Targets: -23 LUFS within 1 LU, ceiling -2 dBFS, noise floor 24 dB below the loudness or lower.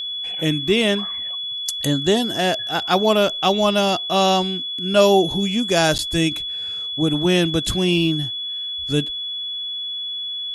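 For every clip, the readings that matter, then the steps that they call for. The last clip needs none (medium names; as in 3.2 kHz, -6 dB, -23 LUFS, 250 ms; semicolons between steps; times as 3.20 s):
dropouts 1; longest dropout 9.2 ms; steady tone 3.4 kHz; tone level -25 dBFS; loudness -19.5 LUFS; peak level -3.0 dBFS; loudness target -23.0 LUFS
-> interpolate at 5.98 s, 9.2 ms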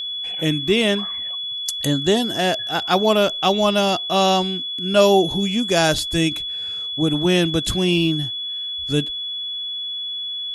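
dropouts 0; steady tone 3.4 kHz; tone level -25 dBFS
-> band-stop 3.4 kHz, Q 30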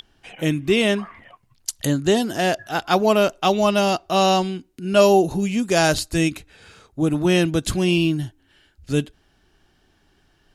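steady tone not found; loudness -20.0 LUFS; peak level -3.5 dBFS; loudness target -23.0 LUFS
-> trim -3 dB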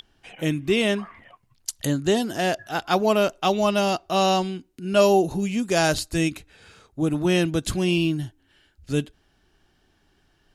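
loudness -23.0 LUFS; peak level -6.5 dBFS; noise floor -65 dBFS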